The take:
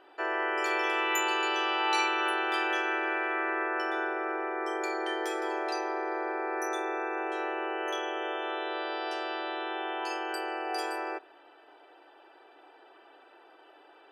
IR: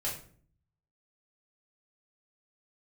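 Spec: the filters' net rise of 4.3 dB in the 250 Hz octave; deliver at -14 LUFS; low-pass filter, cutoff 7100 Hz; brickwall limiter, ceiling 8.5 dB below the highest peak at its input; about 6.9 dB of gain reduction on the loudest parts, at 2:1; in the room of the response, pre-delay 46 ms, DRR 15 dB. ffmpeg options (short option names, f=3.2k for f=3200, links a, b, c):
-filter_complex "[0:a]lowpass=7.1k,equalizer=f=250:t=o:g=7.5,acompressor=threshold=-37dB:ratio=2,alimiter=level_in=6.5dB:limit=-24dB:level=0:latency=1,volume=-6.5dB,asplit=2[a][b];[1:a]atrim=start_sample=2205,adelay=46[c];[b][c]afir=irnorm=-1:irlink=0,volume=-18.5dB[d];[a][d]amix=inputs=2:normalize=0,volume=25dB"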